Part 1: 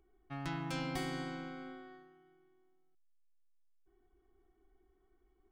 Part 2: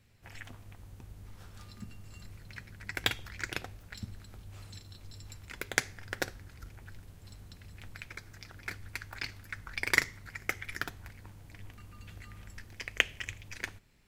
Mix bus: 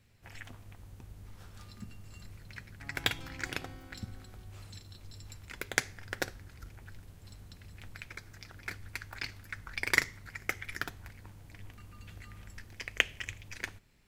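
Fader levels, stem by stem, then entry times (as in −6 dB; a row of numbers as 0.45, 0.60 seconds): −11.0, −0.5 decibels; 2.50, 0.00 seconds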